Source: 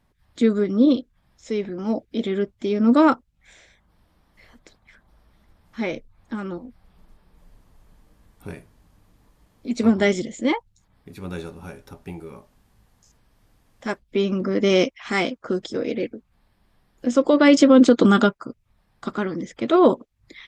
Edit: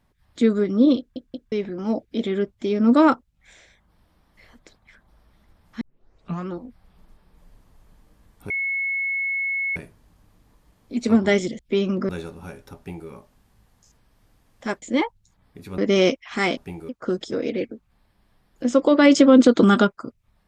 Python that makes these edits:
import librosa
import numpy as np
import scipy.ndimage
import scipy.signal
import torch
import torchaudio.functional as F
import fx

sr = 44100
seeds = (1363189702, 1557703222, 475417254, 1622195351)

y = fx.edit(x, sr, fx.stutter_over(start_s=0.98, slice_s=0.18, count=3),
    fx.tape_start(start_s=5.81, length_s=0.67),
    fx.insert_tone(at_s=8.5, length_s=1.26, hz=2190.0, db=-22.0),
    fx.swap(start_s=10.33, length_s=0.96, other_s=14.02, other_length_s=0.5),
    fx.duplicate(start_s=11.97, length_s=0.32, to_s=15.31), tone=tone)